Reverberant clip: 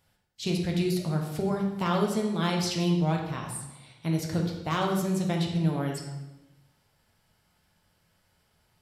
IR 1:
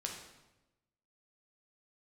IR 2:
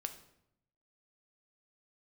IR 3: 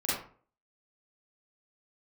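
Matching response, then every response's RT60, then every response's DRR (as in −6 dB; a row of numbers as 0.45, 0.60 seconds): 1; 1.0, 0.75, 0.45 seconds; 0.0, 6.5, −9.5 decibels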